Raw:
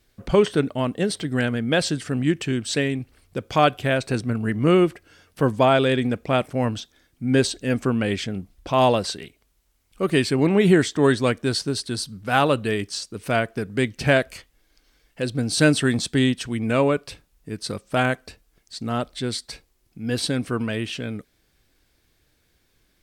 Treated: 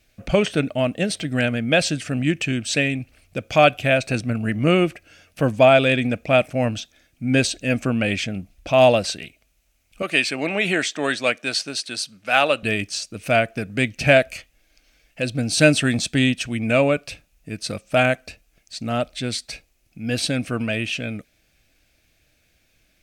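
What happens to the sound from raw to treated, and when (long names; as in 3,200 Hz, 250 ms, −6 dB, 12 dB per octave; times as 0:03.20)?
0:10.02–0:12.63: meter weighting curve A
whole clip: thirty-one-band graphic EQ 400 Hz −7 dB, 630 Hz +7 dB, 1,000 Hz −8 dB, 2,500 Hz +10 dB, 6,300 Hz +4 dB; level +1 dB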